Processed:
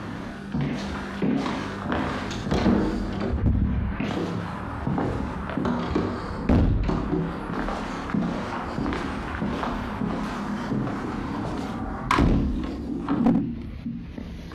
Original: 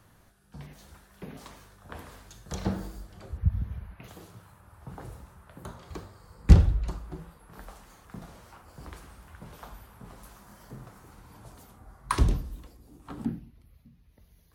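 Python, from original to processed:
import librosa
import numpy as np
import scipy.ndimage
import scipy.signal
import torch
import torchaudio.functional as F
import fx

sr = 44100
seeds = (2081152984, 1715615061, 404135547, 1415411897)

p1 = fx.tracing_dist(x, sr, depth_ms=0.2)
p2 = scipy.signal.sosfilt(scipy.signal.butter(2, 3600.0, 'lowpass', fs=sr, output='sos'), p1)
p3 = fx.doubler(p2, sr, ms=29.0, db=-6.0)
p4 = fx.rider(p3, sr, range_db=10, speed_s=0.5)
p5 = p3 + F.gain(torch.from_numpy(p4), 1.0).numpy()
p6 = 10.0 ** (-11.5 / 20.0) * np.tanh(p5 / 10.0 ** (-11.5 / 20.0))
p7 = fx.peak_eq(p6, sr, hz=250.0, db=14.0, octaves=1.1)
p8 = fx.clip_asym(p7, sr, top_db=-14.0, bottom_db=-6.0)
p9 = fx.low_shelf(p8, sr, hz=460.0, db=-6.5)
p10 = p9 + 10.0 ** (-13.5 / 20.0) * np.pad(p9, (int(86 * sr / 1000.0), 0))[:len(p9)]
y = fx.env_flatten(p10, sr, amount_pct=50)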